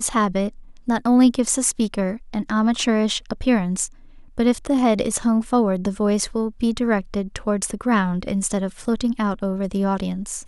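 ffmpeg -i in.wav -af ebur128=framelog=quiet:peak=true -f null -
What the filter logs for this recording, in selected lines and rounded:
Integrated loudness:
  I:         -21.3 LUFS
  Threshold: -31.4 LUFS
Loudness range:
  LRA:         2.7 LU
  Threshold: -41.4 LUFS
  LRA low:   -22.9 LUFS
  LRA high:  -20.1 LUFS
True peak:
  Peak:       -5.2 dBFS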